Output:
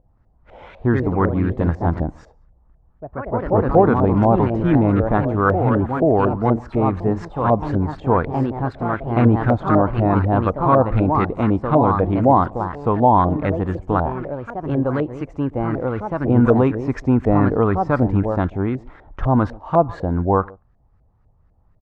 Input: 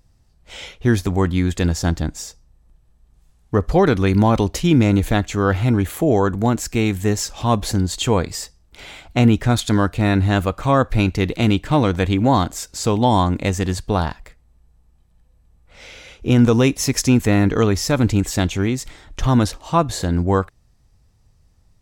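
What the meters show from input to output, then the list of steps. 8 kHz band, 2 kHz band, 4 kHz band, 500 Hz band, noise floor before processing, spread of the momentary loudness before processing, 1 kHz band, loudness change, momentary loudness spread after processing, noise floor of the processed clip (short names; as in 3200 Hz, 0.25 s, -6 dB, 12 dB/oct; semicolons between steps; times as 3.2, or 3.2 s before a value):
under -30 dB, -3.0 dB, under -15 dB, +2.5 dB, -57 dBFS, 9 LU, +4.0 dB, 0.0 dB, 9 LU, -57 dBFS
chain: outdoor echo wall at 24 m, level -24 dB; echoes that change speed 0.174 s, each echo +2 st, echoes 3, each echo -6 dB; LFO low-pass saw up 4 Hz 600–1600 Hz; gain -2 dB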